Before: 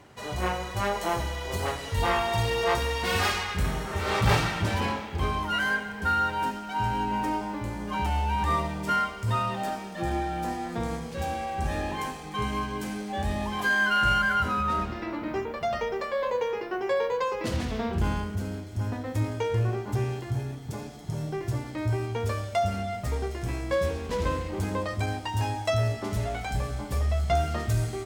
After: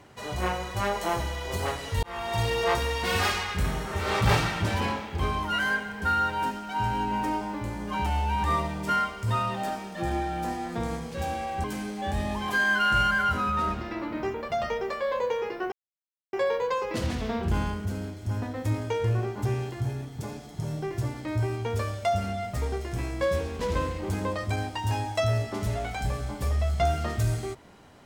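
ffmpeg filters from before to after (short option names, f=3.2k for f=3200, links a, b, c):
-filter_complex "[0:a]asplit=4[a][b][c][d];[a]atrim=end=2.03,asetpts=PTS-STARTPTS,afade=t=out:st=2.026:d=0.004:c=hsin[e];[b]atrim=start=2.03:end=11.642,asetpts=PTS-STARTPTS,afade=t=in:d=0.39[f];[c]atrim=start=12.748:end=16.83,asetpts=PTS-STARTPTS,afade=t=out:st=4.078:d=0.004:c=hsin,apad=pad_dur=0.61[g];[d]atrim=start=16.83,asetpts=PTS-STARTPTS,afade=t=in:d=0.004:c=hsin[h];[e][f]concat=n=2:v=0:a=1[i];[g][h]concat=n=2:v=0:a=1[j];[i][j]acrossfade=d=0.004:c1=hsin:c2=hsin"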